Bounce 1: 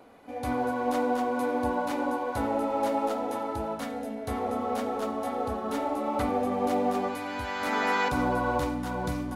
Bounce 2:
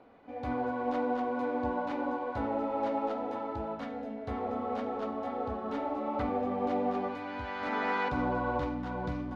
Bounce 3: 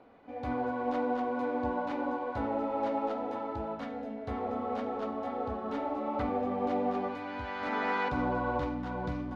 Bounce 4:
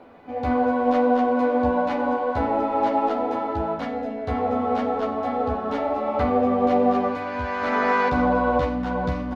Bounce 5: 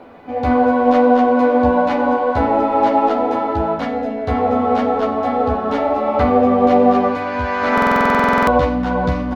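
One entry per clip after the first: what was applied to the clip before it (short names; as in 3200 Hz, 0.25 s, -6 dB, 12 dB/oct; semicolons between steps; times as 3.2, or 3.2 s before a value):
air absorption 220 m; gain -3.5 dB
nothing audible
doubler 12 ms -4 dB; gain +8.5 dB
stuck buffer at 7.73, samples 2048, times 15; gain +7 dB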